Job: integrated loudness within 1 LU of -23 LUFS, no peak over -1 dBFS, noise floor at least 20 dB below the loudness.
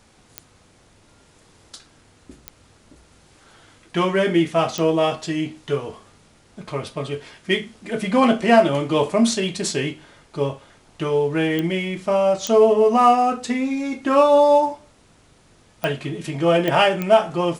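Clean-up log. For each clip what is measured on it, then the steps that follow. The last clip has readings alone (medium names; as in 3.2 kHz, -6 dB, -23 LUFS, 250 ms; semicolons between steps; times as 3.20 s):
clicks found 8; loudness -19.5 LUFS; peak level -2.0 dBFS; loudness target -23.0 LUFS
-> de-click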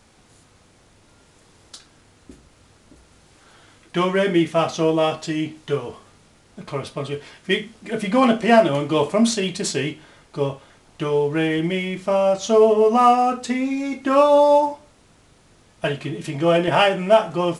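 clicks found 0; loudness -19.5 LUFS; peak level -2.0 dBFS; loudness target -23.0 LUFS
-> trim -3.5 dB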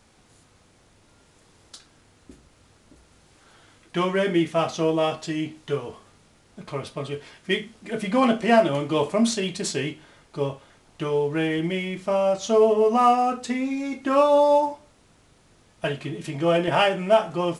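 loudness -23.0 LUFS; peak level -5.5 dBFS; noise floor -58 dBFS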